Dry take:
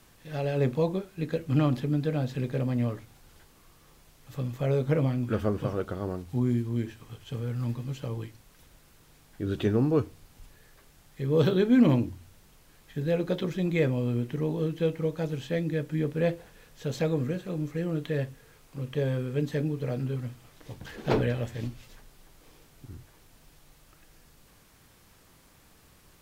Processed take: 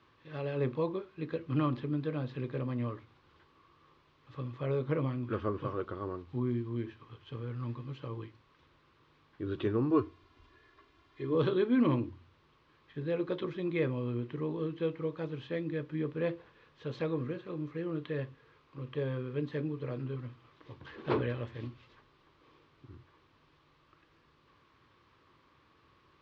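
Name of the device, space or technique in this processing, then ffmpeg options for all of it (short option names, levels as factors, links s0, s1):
guitar cabinet: -filter_complex "[0:a]asettb=1/sr,asplit=3[s0][s1][s2];[s0]atrim=end=9.904[s3];[s1]atrim=start=9.9:end=11.35,asetpts=PTS-STARTPTS,afade=t=in:d=0.004:c=qsin,afade=t=out:st=1.446:d=0.004:c=qsin,aecho=1:1:2.9:0.75,atrim=end_sample=63945[s4];[s2]atrim=start=11.346[s5];[s3][s4]acrossfade=d=0.004:c1=hsin:c2=qsin[s6];[s6][s5]acrossfade=d=0.004:c1=qsin:c2=hsin,highpass=79,equalizer=f=190:t=q:w=4:g=-8,equalizer=f=350:t=q:w=4:g=5,equalizer=f=720:t=q:w=4:g=-7,equalizer=f=1100:t=q:w=4:g=10,lowpass=f=4000:w=0.5412,lowpass=f=4000:w=1.3066,volume=0.501"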